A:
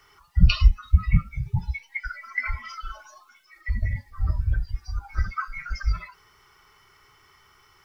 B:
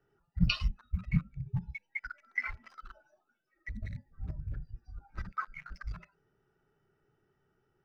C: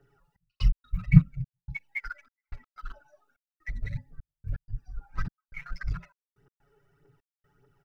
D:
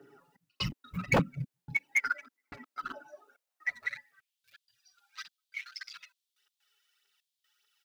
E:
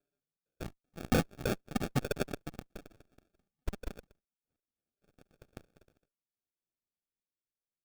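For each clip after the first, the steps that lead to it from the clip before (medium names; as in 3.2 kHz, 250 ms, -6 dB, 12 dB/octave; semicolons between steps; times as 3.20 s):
local Wiener filter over 41 samples; resonant low shelf 110 Hz -9 dB, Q 1.5; trim -5.5 dB
comb 7.1 ms, depth 88%; phaser 1.7 Hz, delay 2.4 ms, feedback 55%; trance gate "xxx..x.xxxxx..xx" 125 bpm -60 dB; trim +2.5 dB
high-pass sweep 270 Hz -> 3.5 kHz, 3.08–4.42 s; wavefolder -25.5 dBFS; trim +7.5 dB
ever faster or slower copies 457 ms, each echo +2 st, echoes 3; Chebyshev shaper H 3 -12 dB, 4 -19 dB, 5 -27 dB, 7 -23 dB, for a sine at -17 dBFS; sample-rate reducer 1 kHz, jitter 0%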